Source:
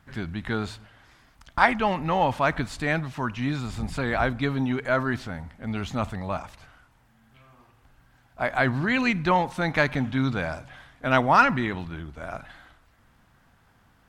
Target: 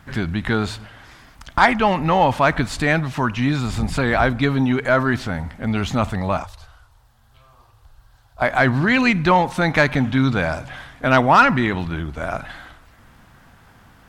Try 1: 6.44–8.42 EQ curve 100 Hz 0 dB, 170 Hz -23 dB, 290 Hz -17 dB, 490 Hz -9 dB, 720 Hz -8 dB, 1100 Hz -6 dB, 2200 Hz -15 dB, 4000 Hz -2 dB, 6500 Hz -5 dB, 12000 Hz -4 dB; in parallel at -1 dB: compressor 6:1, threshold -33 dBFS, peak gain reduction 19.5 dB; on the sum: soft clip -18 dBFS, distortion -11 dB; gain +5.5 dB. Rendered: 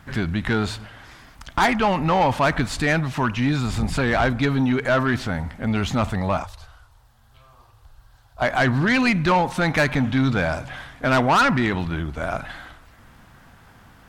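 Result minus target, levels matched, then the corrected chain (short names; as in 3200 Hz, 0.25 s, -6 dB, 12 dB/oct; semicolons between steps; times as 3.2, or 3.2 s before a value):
soft clip: distortion +11 dB
6.44–8.42 EQ curve 100 Hz 0 dB, 170 Hz -23 dB, 290 Hz -17 dB, 490 Hz -9 dB, 720 Hz -8 dB, 1100 Hz -6 dB, 2200 Hz -15 dB, 4000 Hz -2 dB, 6500 Hz -5 dB, 12000 Hz -4 dB; in parallel at -1 dB: compressor 6:1, threshold -33 dBFS, peak gain reduction 19.5 dB; on the sum: soft clip -7.5 dBFS, distortion -22 dB; gain +5.5 dB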